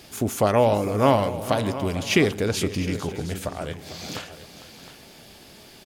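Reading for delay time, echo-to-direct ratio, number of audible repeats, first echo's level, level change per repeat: 452 ms, -10.5 dB, 4, -14.5 dB, no regular repeats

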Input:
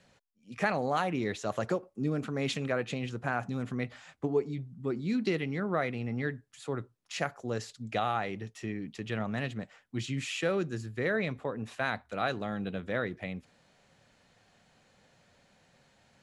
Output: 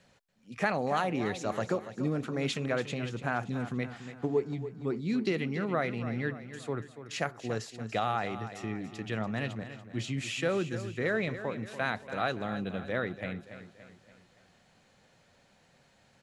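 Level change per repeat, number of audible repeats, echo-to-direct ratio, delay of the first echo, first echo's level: -6.5 dB, 4, -11.0 dB, 286 ms, -12.0 dB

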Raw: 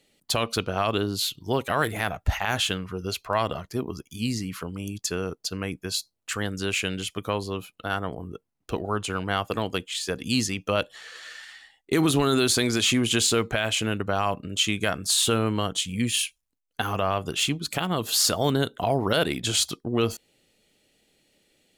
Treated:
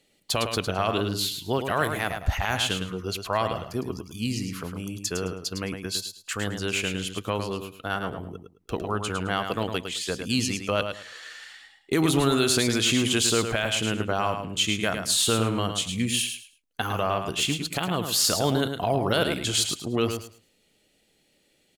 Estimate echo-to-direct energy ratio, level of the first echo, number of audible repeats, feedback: -7.0 dB, -7.0 dB, 3, 21%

